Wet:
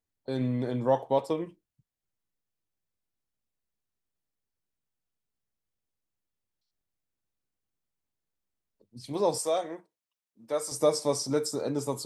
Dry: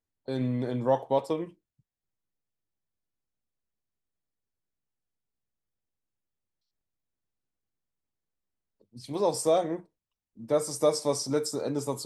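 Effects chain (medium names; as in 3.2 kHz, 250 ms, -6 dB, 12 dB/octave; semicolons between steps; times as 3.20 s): 9.38–10.72 s: high-pass 770 Hz 6 dB/octave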